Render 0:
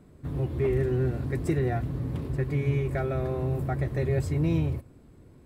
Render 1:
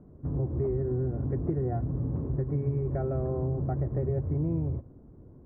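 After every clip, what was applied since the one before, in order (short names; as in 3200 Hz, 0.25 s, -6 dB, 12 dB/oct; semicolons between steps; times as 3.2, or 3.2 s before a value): Bessel low-pass 770 Hz, order 4; compressor, threshold -27 dBFS, peak gain reduction 6.5 dB; gain +2 dB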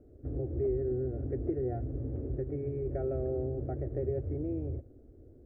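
fixed phaser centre 420 Hz, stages 4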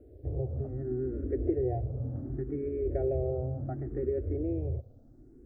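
endless phaser +0.69 Hz; gain +4.5 dB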